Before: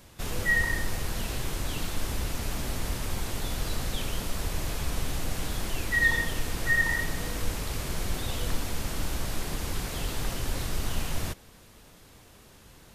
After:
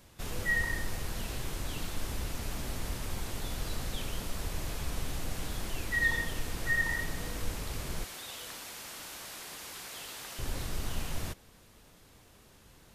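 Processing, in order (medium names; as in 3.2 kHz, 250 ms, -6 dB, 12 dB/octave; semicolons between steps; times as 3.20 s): 8.04–10.39 s: high-pass 1.1 kHz 6 dB/octave; trim -5 dB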